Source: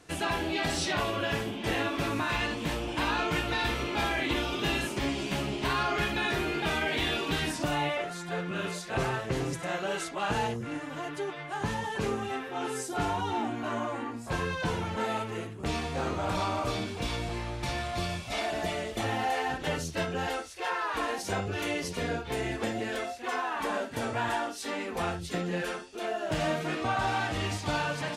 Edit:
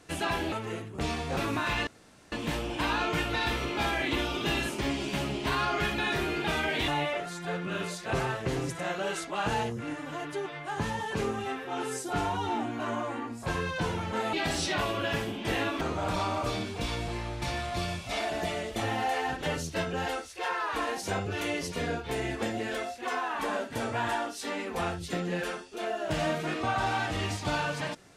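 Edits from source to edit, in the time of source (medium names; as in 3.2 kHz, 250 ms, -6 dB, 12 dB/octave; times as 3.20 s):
0.52–2.00 s: swap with 15.17–16.02 s
2.50 s: insert room tone 0.45 s
7.06–7.72 s: delete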